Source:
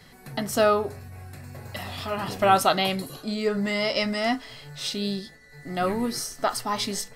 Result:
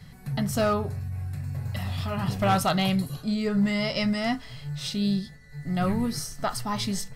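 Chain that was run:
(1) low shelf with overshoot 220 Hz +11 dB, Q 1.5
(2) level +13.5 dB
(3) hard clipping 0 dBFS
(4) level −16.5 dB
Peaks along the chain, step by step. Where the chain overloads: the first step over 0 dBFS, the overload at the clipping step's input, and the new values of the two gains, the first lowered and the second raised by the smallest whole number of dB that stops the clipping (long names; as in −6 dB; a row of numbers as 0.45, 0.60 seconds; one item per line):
−6.0, +7.5, 0.0, −16.5 dBFS
step 2, 7.5 dB
step 2 +5.5 dB, step 4 −8.5 dB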